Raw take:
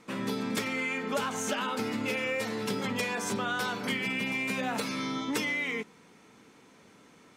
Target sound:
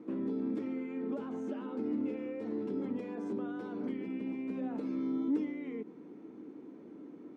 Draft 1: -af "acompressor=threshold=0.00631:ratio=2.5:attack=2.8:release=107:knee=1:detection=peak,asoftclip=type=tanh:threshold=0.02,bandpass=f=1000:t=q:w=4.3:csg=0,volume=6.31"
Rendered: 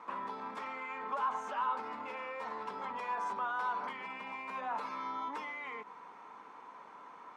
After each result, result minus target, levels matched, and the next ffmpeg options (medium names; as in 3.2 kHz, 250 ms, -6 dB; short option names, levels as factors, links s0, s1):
1 kHz band +19.0 dB; saturation: distortion +19 dB
-af "acompressor=threshold=0.00631:ratio=2.5:attack=2.8:release=107:knee=1:detection=peak,asoftclip=type=tanh:threshold=0.02,bandpass=f=310:t=q:w=4.3:csg=0,volume=6.31"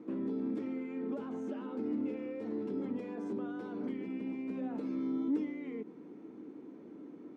saturation: distortion +19 dB
-af "acompressor=threshold=0.00631:ratio=2.5:attack=2.8:release=107:knee=1:detection=peak,asoftclip=type=tanh:threshold=0.0668,bandpass=f=310:t=q:w=4.3:csg=0,volume=6.31"